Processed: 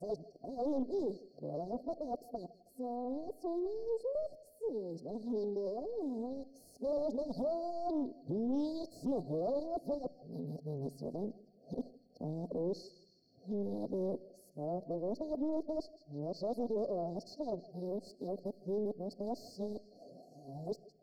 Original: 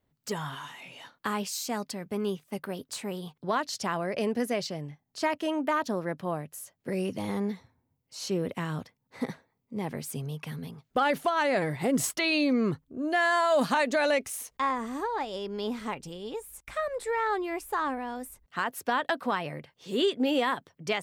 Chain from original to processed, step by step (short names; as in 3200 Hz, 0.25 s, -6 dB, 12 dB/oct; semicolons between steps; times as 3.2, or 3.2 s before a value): whole clip reversed; HPF 250 Hz 12 dB/oct; high shelf 7000 Hz +10 dB; in parallel at +1.5 dB: compressor, threshold -39 dBFS, peak gain reduction 17 dB; on the sum: overloaded stage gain 27 dB; brick-wall FIR band-stop 750–4200 Hz; air absorption 390 m; on a send: narrowing echo 0.161 s, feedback 78%, band-pass 2400 Hz, level -10 dB; on the sum: shoebox room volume 3000 m³, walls furnished, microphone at 0.36 m; Doppler distortion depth 0.23 ms; gain -3.5 dB